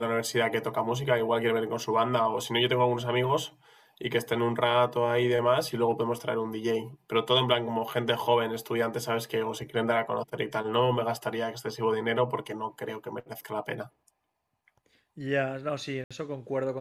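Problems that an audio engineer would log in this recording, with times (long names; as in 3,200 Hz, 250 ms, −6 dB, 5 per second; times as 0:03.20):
0:16.04–0:16.11: drop-out 66 ms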